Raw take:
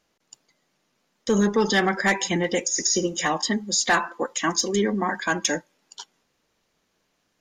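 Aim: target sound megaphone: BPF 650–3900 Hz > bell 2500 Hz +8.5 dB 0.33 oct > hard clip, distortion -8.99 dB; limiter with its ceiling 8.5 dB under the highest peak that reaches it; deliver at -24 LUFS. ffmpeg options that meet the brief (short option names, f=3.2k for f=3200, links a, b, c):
-af "alimiter=limit=-19dB:level=0:latency=1,highpass=650,lowpass=3.9k,equalizer=f=2.5k:t=o:w=0.33:g=8.5,asoftclip=type=hard:threshold=-29.5dB,volume=10.5dB"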